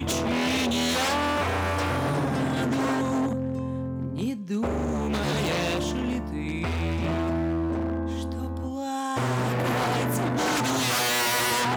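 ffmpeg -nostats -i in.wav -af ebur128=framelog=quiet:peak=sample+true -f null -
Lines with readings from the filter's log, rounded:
Integrated loudness:
  I:         -26.2 LUFS
  Threshold: -36.2 LUFS
Loudness range:
  LRA:         3.2 LU
  Threshold: -47.0 LUFS
  LRA low:   -28.3 LUFS
  LRA high:  -25.1 LUFS
Sample peak:
  Peak:      -14.6 dBFS
True peak:
  Peak:      -14.6 dBFS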